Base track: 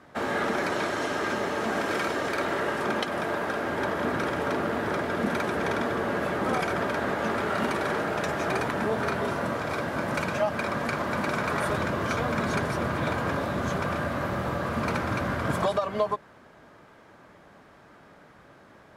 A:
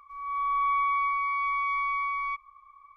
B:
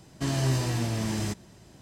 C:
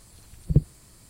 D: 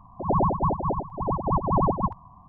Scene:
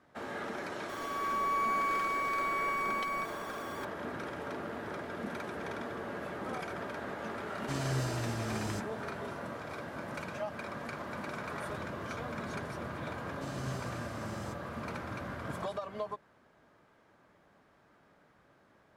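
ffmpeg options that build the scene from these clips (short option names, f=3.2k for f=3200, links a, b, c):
-filter_complex "[2:a]asplit=2[a][b];[0:a]volume=-12dB[c];[1:a]aeval=exprs='val(0)+0.5*0.0168*sgn(val(0))':c=same,atrim=end=2.96,asetpts=PTS-STARTPTS,volume=-6.5dB,afade=t=in:d=0.004:c=hsin,afade=t=out:st=2.956:d=0.004:c=hsin,adelay=890[d];[a]atrim=end=1.81,asetpts=PTS-STARTPTS,volume=-8dB,afade=t=in:d=0.004:c=hsin,afade=t=out:st=1.806:d=0.004:c=hsin,adelay=7470[e];[b]atrim=end=1.81,asetpts=PTS-STARTPTS,volume=-15.5dB,afade=t=in:d=0.004:c=hsin,afade=t=out:st=1.806:d=0.004:c=hsin,adelay=13200[f];[c][d][e][f]amix=inputs=4:normalize=0"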